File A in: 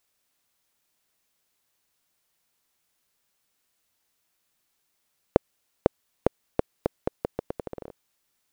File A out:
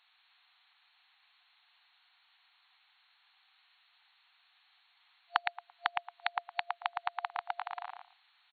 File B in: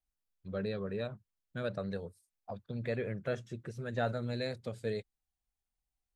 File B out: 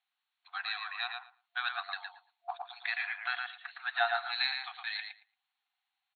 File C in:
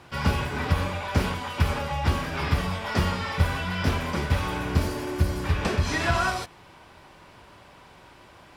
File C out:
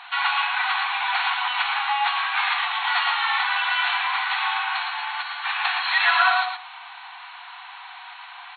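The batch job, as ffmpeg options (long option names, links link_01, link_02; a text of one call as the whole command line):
ffmpeg -i in.wav -filter_complex "[0:a]tiltshelf=frequency=1300:gain=-3.5,asplit=2[link_01][link_02];[link_02]adelay=113,lowpass=frequency=3200:poles=1,volume=-4dB,asplit=2[link_03][link_04];[link_04]adelay=113,lowpass=frequency=3200:poles=1,volume=0.16,asplit=2[link_05][link_06];[link_06]adelay=113,lowpass=frequency=3200:poles=1,volume=0.16[link_07];[link_01][link_03][link_05][link_07]amix=inputs=4:normalize=0,asplit=2[link_08][link_09];[link_09]acompressor=threshold=-34dB:ratio=6,volume=0dB[link_10];[link_08][link_10]amix=inputs=2:normalize=0,aeval=exprs='0.376*(abs(mod(val(0)/0.376+3,4)-2)-1)':channel_layout=same,afftfilt=real='re*between(b*sr/4096,690,4400)':imag='im*between(b*sr/4096,690,4400)':win_size=4096:overlap=0.75,volume=5dB" out.wav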